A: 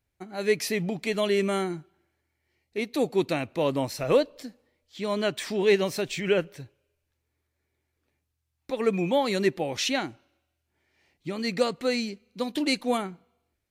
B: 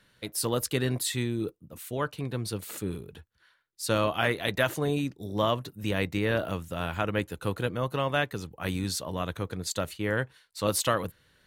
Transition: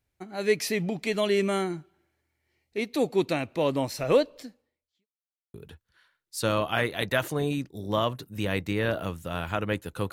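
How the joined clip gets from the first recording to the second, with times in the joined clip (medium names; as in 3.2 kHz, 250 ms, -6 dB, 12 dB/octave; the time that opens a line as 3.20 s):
A
4.36–5.07 s: fade out quadratic
5.07–5.54 s: mute
5.54 s: go over to B from 3.00 s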